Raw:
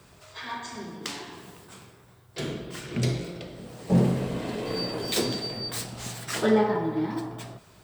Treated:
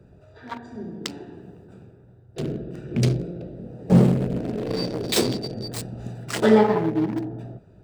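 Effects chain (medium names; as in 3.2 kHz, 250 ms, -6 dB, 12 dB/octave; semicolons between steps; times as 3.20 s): local Wiener filter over 41 samples; trim +6 dB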